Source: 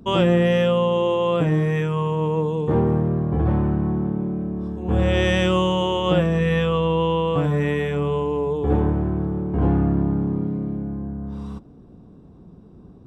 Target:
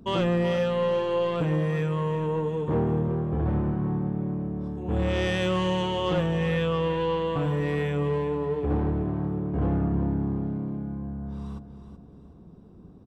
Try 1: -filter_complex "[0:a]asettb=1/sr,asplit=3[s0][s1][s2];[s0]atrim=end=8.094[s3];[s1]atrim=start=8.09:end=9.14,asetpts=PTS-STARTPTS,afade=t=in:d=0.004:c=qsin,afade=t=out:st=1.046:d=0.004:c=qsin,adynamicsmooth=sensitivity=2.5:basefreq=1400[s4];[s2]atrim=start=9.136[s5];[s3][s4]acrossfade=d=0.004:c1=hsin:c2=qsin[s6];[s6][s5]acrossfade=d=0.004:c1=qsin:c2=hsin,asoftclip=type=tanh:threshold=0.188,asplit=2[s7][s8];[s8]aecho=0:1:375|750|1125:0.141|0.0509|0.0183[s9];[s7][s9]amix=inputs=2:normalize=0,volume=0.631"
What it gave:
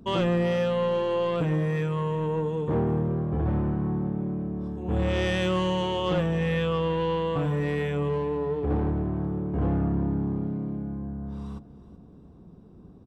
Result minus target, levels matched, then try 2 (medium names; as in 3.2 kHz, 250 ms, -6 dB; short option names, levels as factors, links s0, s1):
echo-to-direct -6.5 dB
-filter_complex "[0:a]asettb=1/sr,asplit=3[s0][s1][s2];[s0]atrim=end=8.094[s3];[s1]atrim=start=8.09:end=9.14,asetpts=PTS-STARTPTS,afade=t=in:d=0.004:c=qsin,afade=t=out:st=1.046:d=0.004:c=qsin,adynamicsmooth=sensitivity=2.5:basefreq=1400[s4];[s2]atrim=start=9.136[s5];[s3][s4]acrossfade=d=0.004:c1=hsin:c2=qsin[s6];[s6][s5]acrossfade=d=0.004:c1=qsin:c2=hsin,asoftclip=type=tanh:threshold=0.188,asplit=2[s7][s8];[s8]aecho=0:1:375|750|1125|1500:0.299|0.107|0.0387|0.0139[s9];[s7][s9]amix=inputs=2:normalize=0,volume=0.631"